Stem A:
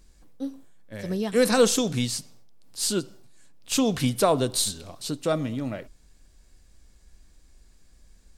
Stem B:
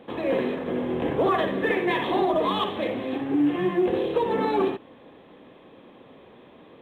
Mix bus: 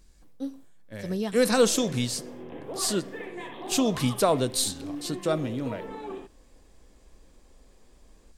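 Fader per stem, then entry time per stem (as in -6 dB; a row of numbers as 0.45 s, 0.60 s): -1.5 dB, -14.5 dB; 0.00 s, 1.50 s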